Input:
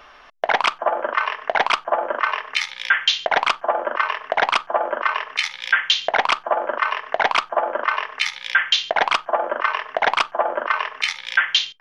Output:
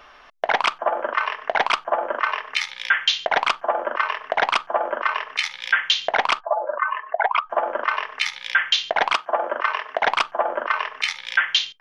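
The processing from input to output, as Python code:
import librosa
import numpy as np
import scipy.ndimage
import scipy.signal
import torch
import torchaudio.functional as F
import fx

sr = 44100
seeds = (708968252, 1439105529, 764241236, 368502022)

y = fx.spec_expand(x, sr, power=2.1, at=(6.39, 7.49), fade=0.02)
y = fx.highpass(y, sr, hz=200.0, slope=12, at=(9.13, 10.02))
y = y * librosa.db_to_amplitude(-1.5)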